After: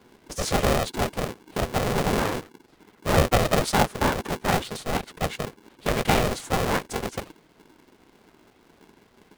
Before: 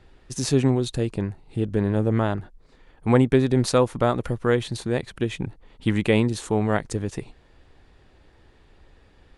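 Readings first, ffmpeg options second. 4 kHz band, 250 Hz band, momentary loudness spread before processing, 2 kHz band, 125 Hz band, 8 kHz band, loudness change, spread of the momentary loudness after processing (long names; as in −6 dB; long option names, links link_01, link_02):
+4.0 dB, −6.0 dB, 11 LU, +3.5 dB, −4.5 dB, +3.0 dB, −2.0 dB, 11 LU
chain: -af "afftfilt=real='hypot(re,im)*cos(2*PI*random(0))':imag='hypot(re,im)*sin(2*PI*random(1))':win_size=512:overlap=0.75,aeval=exprs='val(0)*sgn(sin(2*PI*310*n/s))':channel_layout=same,volume=4dB"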